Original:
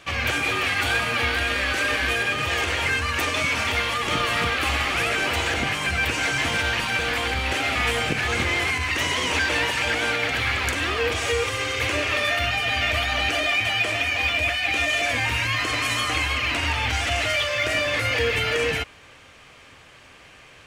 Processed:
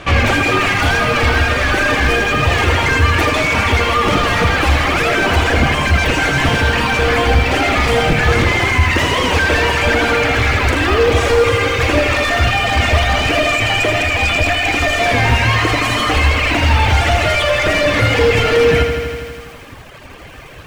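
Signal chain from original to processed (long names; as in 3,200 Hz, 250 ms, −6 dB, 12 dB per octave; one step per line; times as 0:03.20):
in parallel at −4 dB: sine wavefolder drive 12 dB, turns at −9.5 dBFS
on the sum: spectral tilt −3.5 dB per octave
reverb reduction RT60 1.7 s
low-shelf EQ 260 Hz −8.5 dB
feedback echo at a low word length 81 ms, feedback 80%, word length 7 bits, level −8 dB
level +2.5 dB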